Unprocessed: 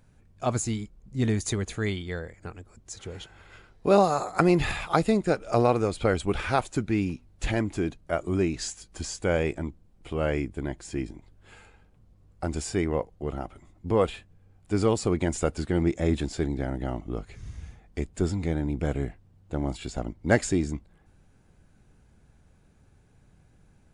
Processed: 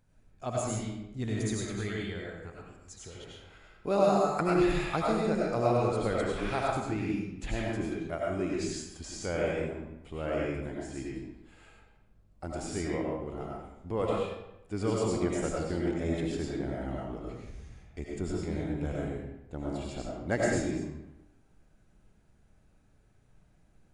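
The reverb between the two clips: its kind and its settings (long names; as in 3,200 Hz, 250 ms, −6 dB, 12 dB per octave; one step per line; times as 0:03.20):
comb and all-pass reverb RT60 0.9 s, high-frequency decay 0.75×, pre-delay 55 ms, DRR −4 dB
level −9.5 dB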